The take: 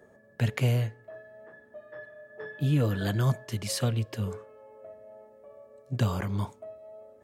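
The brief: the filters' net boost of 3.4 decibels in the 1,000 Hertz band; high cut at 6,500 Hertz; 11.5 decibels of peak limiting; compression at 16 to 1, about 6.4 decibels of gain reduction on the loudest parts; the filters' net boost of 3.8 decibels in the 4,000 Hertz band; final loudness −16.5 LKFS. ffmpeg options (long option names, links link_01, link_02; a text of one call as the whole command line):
ffmpeg -i in.wav -af "lowpass=6500,equalizer=frequency=1000:width_type=o:gain=4,equalizer=frequency=4000:width_type=o:gain=5.5,acompressor=threshold=-26dB:ratio=16,volume=22.5dB,alimiter=limit=-5dB:level=0:latency=1" out.wav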